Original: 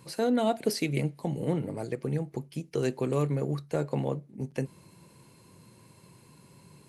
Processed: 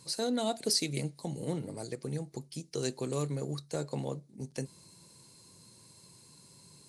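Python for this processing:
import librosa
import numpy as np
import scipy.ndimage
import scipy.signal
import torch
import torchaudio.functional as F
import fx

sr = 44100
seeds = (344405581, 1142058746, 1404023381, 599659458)

y = fx.band_shelf(x, sr, hz=6100.0, db=13.0, octaves=1.7)
y = y * 10.0 ** (-6.0 / 20.0)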